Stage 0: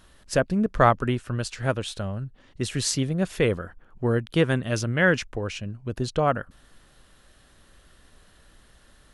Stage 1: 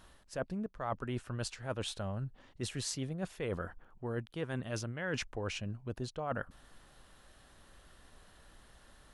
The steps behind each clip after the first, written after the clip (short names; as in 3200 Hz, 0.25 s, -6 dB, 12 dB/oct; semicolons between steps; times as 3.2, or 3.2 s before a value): bell 850 Hz +5 dB 0.93 oct; reverse; compressor 12:1, threshold -29 dBFS, peak gain reduction 20 dB; reverse; gain -4.5 dB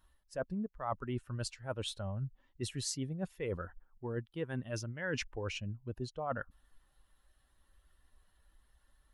per-bin expansion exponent 1.5; gain +2 dB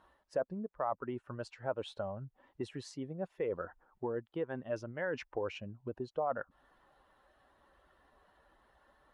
compressor, threshold -45 dBFS, peak gain reduction 14.5 dB; band-pass 650 Hz, Q 0.92; gain +15 dB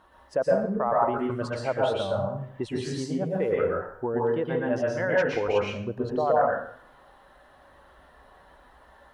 plate-style reverb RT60 0.59 s, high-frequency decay 0.75×, pre-delay 0.105 s, DRR -4 dB; gain +7.5 dB